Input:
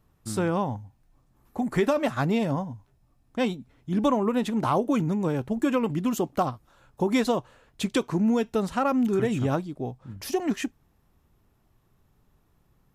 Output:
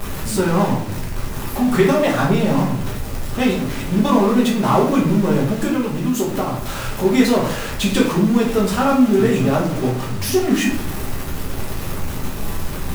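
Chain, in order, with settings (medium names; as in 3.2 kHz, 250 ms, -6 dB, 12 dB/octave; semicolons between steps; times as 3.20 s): jump at every zero crossing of -27.5 dBFS; 5.66–7.05 s: compression 3:1, threshold -26 dBFS, peak gain reduction 6.5 dB; harmonic-percussive split harmonic -3 dB; simulated room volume 85 m³, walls mixed, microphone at 1.3 m; bit crusher 7-bit; trim +2 dB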